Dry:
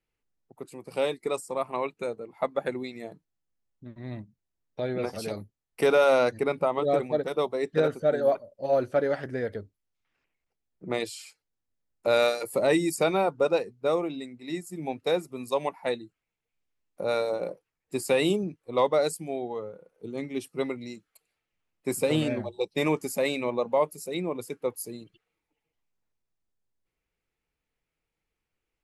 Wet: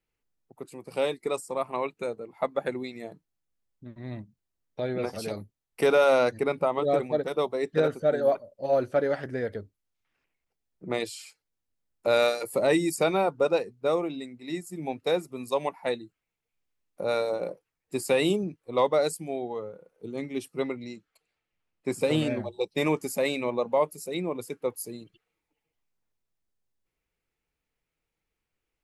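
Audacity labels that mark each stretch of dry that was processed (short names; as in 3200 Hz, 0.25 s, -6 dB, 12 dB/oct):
20.600000	22.010000	Bessel low-pass 5700 Hz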